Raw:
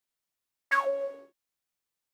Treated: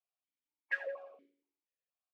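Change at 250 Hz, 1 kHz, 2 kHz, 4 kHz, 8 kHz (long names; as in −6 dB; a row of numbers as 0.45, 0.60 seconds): below −15 dB, −24.5 dB, −8.0 dB, −11.5 dB, can't be measured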